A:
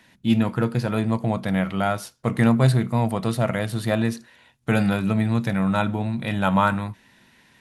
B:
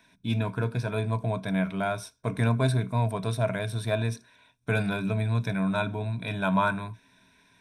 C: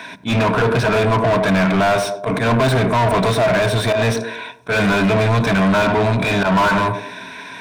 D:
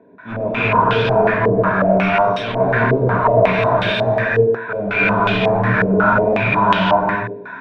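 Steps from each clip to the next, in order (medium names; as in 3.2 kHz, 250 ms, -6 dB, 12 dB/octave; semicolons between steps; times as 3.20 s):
rippled EQ curve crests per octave 1.6, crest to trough 12 dB; trim -7 dB
slow attack 129 ms; band-passed feedback delay 101 ms, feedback 41%, band-pass 390 Hz, level -12.5 dB; overdrive pedal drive 35 dB, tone 1.7 kHz, clips at -12 dBFS; trim +4.5 dB
gated-style reverb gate 370 ms rising, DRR -7.5 dB; step-sequenced low-pass 5.5 Hz 440–3200 Hz; trim -11 dB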